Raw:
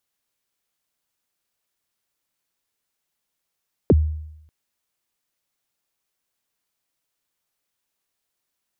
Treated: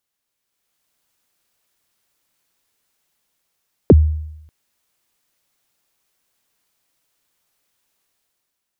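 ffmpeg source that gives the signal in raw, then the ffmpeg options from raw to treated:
-f lavfi -i "aevalsrc='0.376*pow(10,-3*t/0.82)*sin(2*PI*(540*0.036/log(77/540)*(exp(log(77/540)*min(t,0.036)/0.036)-1)+77*max(t-0.036,0)))':duration=0.59:sample_rate=44100"
-af "dynaudnorm=framelen=120:gausssize=11:maxgain=9dB"

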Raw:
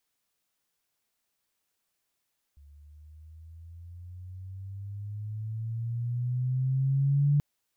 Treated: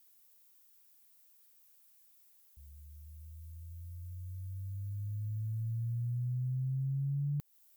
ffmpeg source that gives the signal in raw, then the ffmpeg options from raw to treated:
-f lavfi -i "aevalsrc='pow(10,(-19.5+31*(t/4.83-1))/20)*sin(2*PI*70.9*4.83/(12.5*log(2)/12)*(exp(12.5*log(2)/12*t/4.83)-1))':duration=4.83:sample_rate=44100"
-af "aemphasis=mode=production:type=50fm,acompressor=threshold=-33dB:ratio=6"

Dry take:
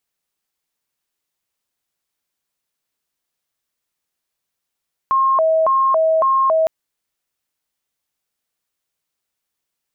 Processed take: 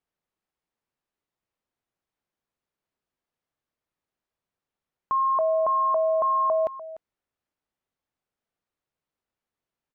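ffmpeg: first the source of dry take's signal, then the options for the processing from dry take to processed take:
-f lavfi -i "aevalsrc='0.251*sin(2*PI*(856*t+214/1.8*(0.5-abs(mod(1.8*t,1)-0.5))))':duration=1.56:sample_rate=44100"
-af "lowpass=frequency=1000:poles=1,alimiter=limit=-19.5dB:level=0:latency=1:release=94,aecho=1:1:296:0.168"

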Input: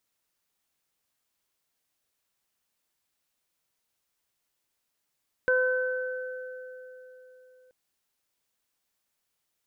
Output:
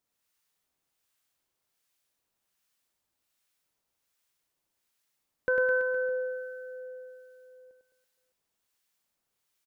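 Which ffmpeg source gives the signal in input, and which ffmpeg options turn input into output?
-f lavfi -i "aevalsrc='0.0794*pow(10,-3*t/3.87)*sin(2*PI*509*t)+0.0119*pow(10,-3*t/1.31)*sin(2*PI*1018*t)+0.075*pow(10,-3*t/2.78)*sin(2*PI*1527*t)':duration=2.23:sample_rate=44100"
-filter_complex "[0:a]asplit=2[link_01][link_02];[link_02]aecho=0:1:100|210|331|464.1|610.5:0.631|0.398|0.251|0.158|0.1[link_03];[link_01][link_03]amix=inputs=2:normalize=0,acrossover=split=1100[link_04][link_05];[link_04]aeval=exprs='val(0)*(1-0.5/2+0.5/2*cos(2*PI*1.3*n/s))':channel_layout=same[link_06];[link_05]aeval=exprs='val(0)*(1-0.5/2-0.5/2*cos(2*PI*1.3*n/s))':channel_layout=same[link_07];[link_06][link_07]amix=inputs=2:normalize=0"

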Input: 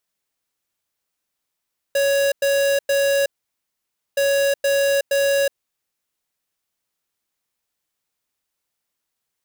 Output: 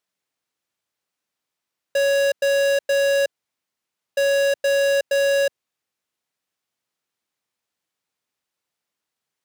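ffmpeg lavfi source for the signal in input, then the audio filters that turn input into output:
-f lavfi -i "aevalsrc='0.126*(2*lt(mod(557*t,1),0.5)-1)*clip(min(mod(mod(t,2.22),0.47),0.37-mod(mod(t,2.22),0.47))/0.005,0,1)*lt(mod(t,2.22),1.41)':duration=4.44:sample_rate=44100"
-af "highpass=97,highshelf=frequency=8400:gain=-9.5"

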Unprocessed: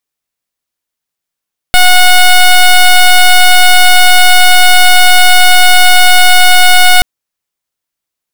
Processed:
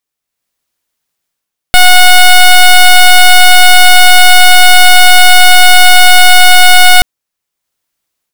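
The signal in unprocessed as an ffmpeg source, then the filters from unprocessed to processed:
-f lavfi -i "aevalsrc='0.708*(2*lt(mod(729*t,1),0.11)-1)':duration=5.28:sample_rate=44100"
-af "dynaudnorm=framelen=250:gausssize=3:maxgain=8dB"

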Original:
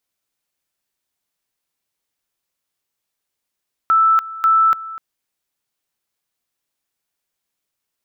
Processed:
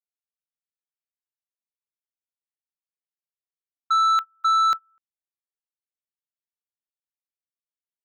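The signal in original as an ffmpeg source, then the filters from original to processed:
-f lavfi -i "aevalsrc='pow(10,(-10-17.5*gte(mod(t,0.54),0.29))/20)*sin(2*PI*1320*t)':duration=1.08:sample_rate=44100"
-af "agate=range=-33dB:threshold=-17dB:ratio=16:detection=peak,asoftclip=type=tanh:threshold=-16.5dB"

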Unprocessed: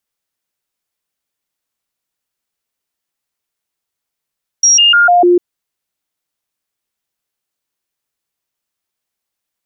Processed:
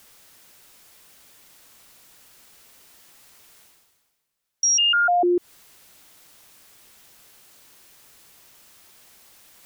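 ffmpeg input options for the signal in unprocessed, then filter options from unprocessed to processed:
-f lavfi -i "aevalsrc='0.562*clip(min(mod(t,0.15),0.15-mod(t,0.15))/0.005,0,1)*sin(2*PI*5650*pow(2,-floor(t/0.15)/1)*mod(t,0.15))':duration=0.75:sample_rate=44100"
-af "areverse,acompressor=mode=upward:threshold=-30dB:ratio=2.5,areverse,alimiter=limit=-15.5dB:level=0:latency=1:release=140"

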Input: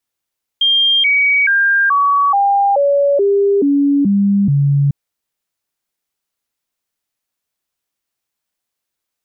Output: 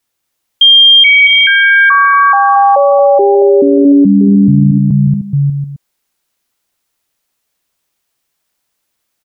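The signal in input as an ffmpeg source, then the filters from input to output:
-f lavfi -i "aevalsrc='0.335*clip(min(mod(t,0.43),0.43-mod(t,0.43))/0.005,0,1)*sin(2*PI*3200*pow(2,-floor(t/0.43)/2)*mod(t,0.43))':duration=4.3:sample_rate=44100"
-filter_complex "[0:a]asplit=2[link_01][link_02];[link_02]aecho=0:1:230|425.5|591.7|732.9|853:0.631|0.398|0.251|0.158|0.1[link_03];[link_01][link_03]amix=inputs=2:normalize=0,alimiter=level_in=8.5dB:limit=-1dB:release=50:level=0:latency=1"

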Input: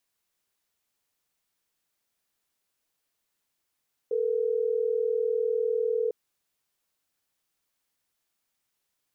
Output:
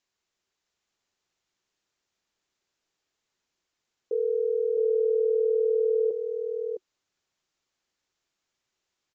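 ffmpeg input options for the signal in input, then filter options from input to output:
-f lavfi -i "aevalsrc='0.0473*(sin(2*PI*440*t)+sin(2*PI*480*t))*clip(min(mod(t,6),2-mod(t,6))/0.005,0,1)':duration=3.12:sample_rate=44100"
-filter_complex "[0:a]equalizer=frequency=370:width_type=o:width=0.23:gain=5.5,asplit=2[link_01][link_02];[link_02]aecho=0:1:659:0.562[link_03];[link_01][link_03]amix=inputs=2:normalize=0,aresample=16000,aresample=44100"

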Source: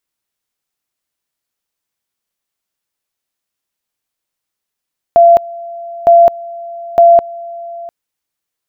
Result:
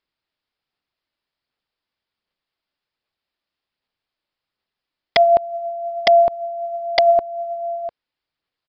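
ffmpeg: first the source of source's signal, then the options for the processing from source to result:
-f lavfi -i "aevalsrc='pow(10,(-2-21.5*gte(mod(t,0.91),0.21))/20)*sin(2*PI*683*t)':duration=2.73:sample_rate=44100"
-af "acompressor=threshold=-12dB:ratio=6,aresample=11025,aeval=exprs='(mod(2.24*val(0)+1,2)-1)/2.24':channel_layout=same,aresample=44100,aphaser=in_gain=1:out_gain=1:delay=3.5:decay=0.24:speed=1.3:type=sinusoidal"

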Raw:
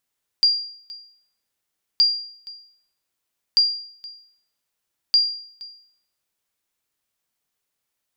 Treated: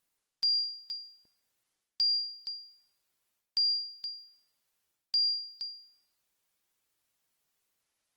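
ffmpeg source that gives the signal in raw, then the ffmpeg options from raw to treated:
-f lavfi -i "aevalsrc='0.335*(sin(2*PI*4780*mod(t,1.57))*exp(-6.91*mod(t,1.57)/0.6)+0.0891*sin(2*PI*4780*max(mod(t,1.57)-0.47,0))*exp(-6.91*max(mod(t,1.57)-0.47,0)/0.6))':duration=6.28:sample_rate=44100"
-af "areverse,acompressor=threshold=-27dB:ratio=6,areverse" -ar 48000 -c:a libopus -b:a 20k

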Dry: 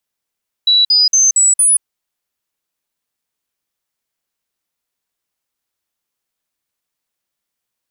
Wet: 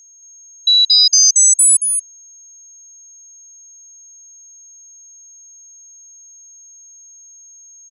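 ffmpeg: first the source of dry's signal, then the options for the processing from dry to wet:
-f lavfi -i "aevalsrc='0.422*clip(min(mod(t,0.23),0.18-mod(t,0.23))/0.005,0,1)*sin(2*PI*3930*pow(2,floor(t/0.23)/3)*mod(t,0.23))':duration=1.15:sample_rate=44100"
-filter_complex "[0:a]aeval=exprs='val(0)+0.00708*sin(2*PI*6500*n/s)':channel_layout=same,asplit=2[link_01][link_02];[link_02]aecho=0:1:226:0.501[link_03];[link_01][link_03]amix=inputs=2:normalize=0"

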